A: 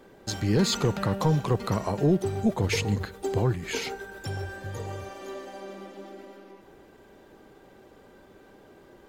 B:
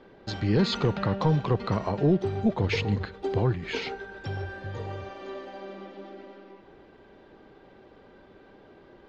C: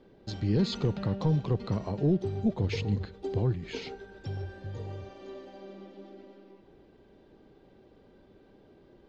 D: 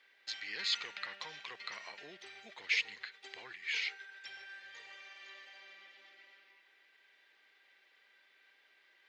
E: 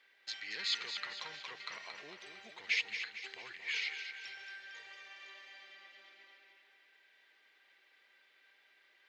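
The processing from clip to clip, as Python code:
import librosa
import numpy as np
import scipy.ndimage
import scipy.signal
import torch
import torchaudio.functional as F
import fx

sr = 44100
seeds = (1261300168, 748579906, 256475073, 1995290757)

y1 = scipy.signal.sosfilt(scipy.signal.butter(4, 4500.0, 'lowpass', fs=sr, output='sos'), x)
y2 = fx.peak_eq(y1, sr, hz=1400.0, db=-10.5, octaves=2.6)
y2 = F.gain(torch.from_numpy(y2), -1.5).numpy()
y3 = fx.highpass_res(y2, sr, hz=2000.0, q=3.4)
y3 = F.gain(torch.from_numpy(y3), 1.5).numpy()
y4 = fx.echo_feedback(y3, sr, ms=227, feedback_pct=49, wet_db=-8)
y4 = F.gain(torch.from_numpy(y4), -1.0).numpy()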